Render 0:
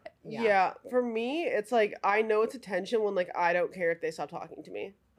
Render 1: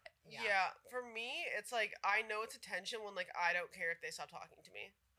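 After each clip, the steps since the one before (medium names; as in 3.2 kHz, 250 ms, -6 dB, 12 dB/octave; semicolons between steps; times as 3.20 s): amplifier tone stack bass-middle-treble 10-0-10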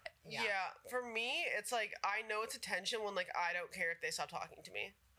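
compression 10:1, threshold -42 dBFS, peak gain reduction 12.5 dB; trim +7.5 dB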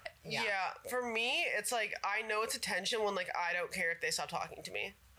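peak limiter -33.5 dBFS, peak gain reduction 9 dB; trim +8.5 dB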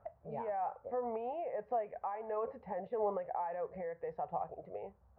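four-pole ladder low-pass 930 Hz, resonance 40%; trim +6 dB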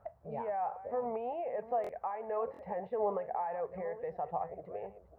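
chunks repeated in reverse 695 ms, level -14 dB; buffer glitch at 1.82/2.52 s, samples 1024, times 2; trim +2 dB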